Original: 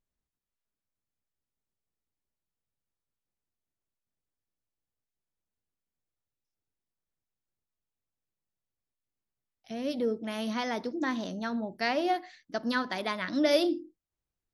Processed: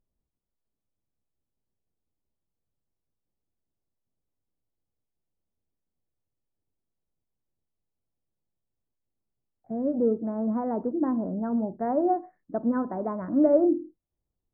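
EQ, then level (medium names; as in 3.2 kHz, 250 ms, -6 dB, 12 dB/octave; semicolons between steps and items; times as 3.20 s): Gaussian low-pass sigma 9.5 samples; +7.0 dB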